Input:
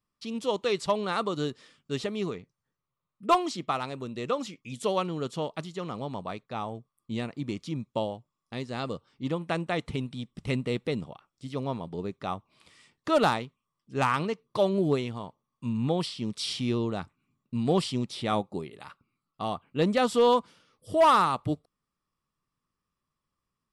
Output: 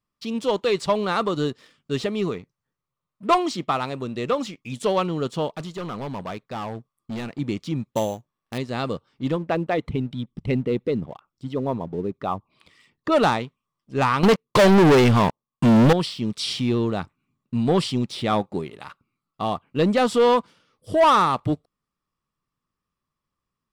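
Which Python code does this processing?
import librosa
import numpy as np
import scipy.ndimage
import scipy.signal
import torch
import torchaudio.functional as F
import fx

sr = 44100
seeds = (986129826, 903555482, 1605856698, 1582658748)

y = fx.clip_hard(x, sr, threshold_db=-34.0, at=(5.56, 7.39))
y = fx.sample_hold(y, sr, seeds[0], rate_hz=6800.0, jitter_pct=0, at=(7.91, 8.58))
y = fx.envelope_sharpen(y, sr, power=1.5, at=(9.36, 13.12))
y = fx.leveller(y, sr, passes=5, at=(14.23, 15.93))
y = fx.high_shelf(y, sr, hz=6800.0, db=-6.0)
y = fx.leveller(y, sr, passes=1)
y = y * 10.0 ** (3.0 / 20.0)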